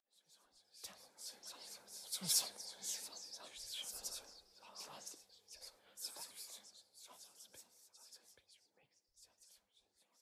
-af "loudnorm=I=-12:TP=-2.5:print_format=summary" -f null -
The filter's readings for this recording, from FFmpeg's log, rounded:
Input Integrated:    -44.5 LUFS
Input True Peak:     -19.7 dBTP
Input LRA:            21.3 LU
Input Threshold:     -57.4 LUFS